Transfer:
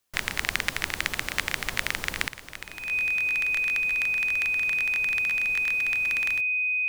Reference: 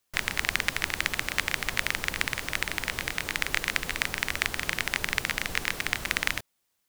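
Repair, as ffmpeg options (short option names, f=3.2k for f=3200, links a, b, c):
-af "bandreject=f=2.5k:w=30,asetnsamples=n=441:p=0,asendcmd='2.28 volume volume 10dB',volume=0dB"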